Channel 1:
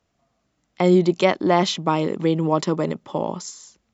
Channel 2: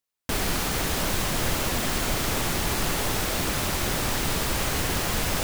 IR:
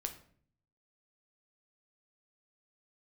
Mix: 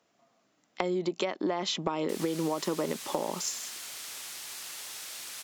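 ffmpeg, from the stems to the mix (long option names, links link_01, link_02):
-filter_complex "[0:a]highpass=250,acompressor=threshold=-25dB:ratio=6,volume=2.5dB[link_01];[1:a]bandpass=frequency=7300:width_type=q:width=0.52:csg=0,adelay=1800,volume=-9dB[link_02];[link_01][link_02]amix=inputs=2:normalize=0,acompressor=threshold=-26dB:ratio=6"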